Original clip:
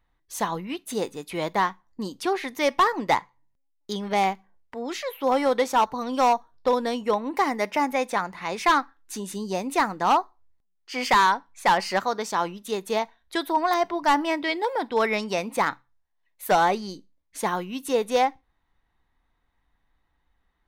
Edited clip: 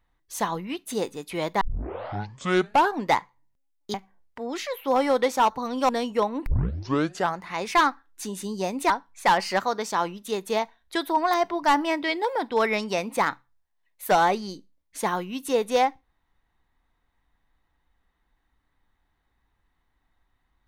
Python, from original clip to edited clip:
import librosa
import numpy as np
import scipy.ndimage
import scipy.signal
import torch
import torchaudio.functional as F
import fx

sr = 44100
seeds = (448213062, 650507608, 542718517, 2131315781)

y = fx.edit(x, sr, fx.tape_start(start_s=1.61, length_s=1.48),
    fx.cut(start_s=3.94, length_s=0.36),
    fx.cut(start_s=6.25, length_s=0.55),
    fx.tape_start(start_s=7.37, length_s=0.93),
    fx.cut(start_s=9.81, length_s=1.49), tone=tone)